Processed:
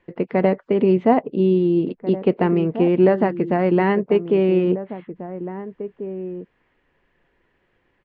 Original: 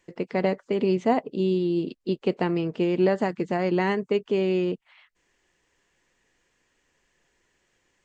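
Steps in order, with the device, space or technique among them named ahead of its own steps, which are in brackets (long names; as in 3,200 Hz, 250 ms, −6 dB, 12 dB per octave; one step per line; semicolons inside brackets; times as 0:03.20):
shout across a valley (high-frequency loss of the air 470 metres; slap from a distant wall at 290 metres, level −12 dB)
level +7.5 dB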